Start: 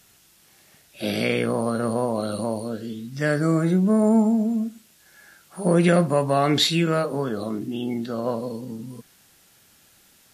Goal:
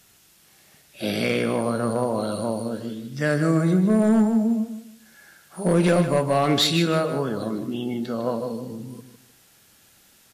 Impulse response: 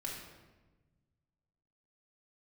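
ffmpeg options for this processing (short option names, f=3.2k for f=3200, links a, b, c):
-af "asoftclip=type=hard:threshold=-12.5dB,aecho=1:1:154|308|462:0.316|0.0854|0.0231"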